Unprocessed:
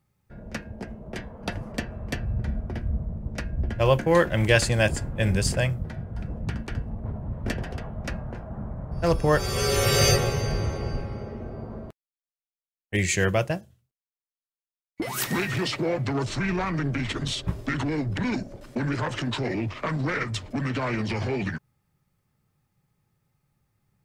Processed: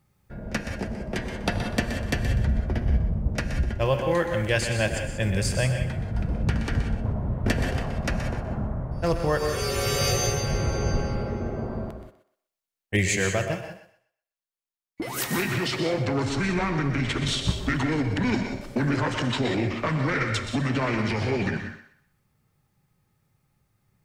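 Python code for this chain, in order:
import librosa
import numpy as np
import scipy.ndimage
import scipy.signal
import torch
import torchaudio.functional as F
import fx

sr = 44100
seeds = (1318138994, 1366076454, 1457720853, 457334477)

p1 = fx.rider(x, sr, range_db=5, speed_s=0.5)
p2 = p1 + fx.echo_thinned(p1, sr, ms=124, feedback_pct=28, hz=420.0, wet_db=-10, dry=0)
y = fx.rev_gated(p2, sr, seeds[0], gate_ms=210, shape='rising', drr_db=6.5)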